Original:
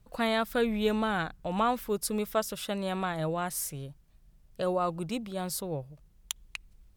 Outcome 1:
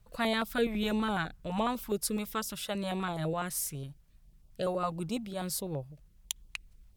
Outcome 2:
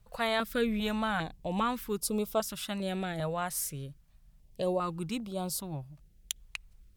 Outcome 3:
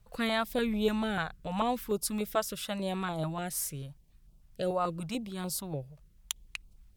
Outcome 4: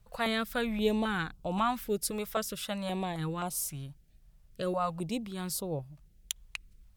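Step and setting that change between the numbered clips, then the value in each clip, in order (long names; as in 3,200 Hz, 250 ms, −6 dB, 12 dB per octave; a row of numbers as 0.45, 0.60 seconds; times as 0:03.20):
notch on a step sequencer, speed: 12, 2.5, 6.8, 3.8 Hertz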